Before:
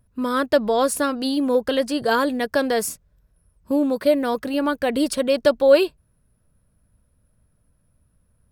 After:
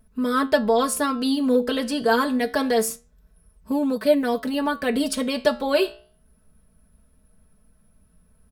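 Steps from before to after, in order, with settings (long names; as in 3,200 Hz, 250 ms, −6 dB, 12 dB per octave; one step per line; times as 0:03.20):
flanger 0.26 Hz, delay 9 ms, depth 8.6 ms, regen +77%
comb filter 4.6 ms, depth 83%
in parallel at 0 dB: downward compressor, threshold −46 dBFS, peak gain reduction 28.5 dB
on the sum: level +1.5 dB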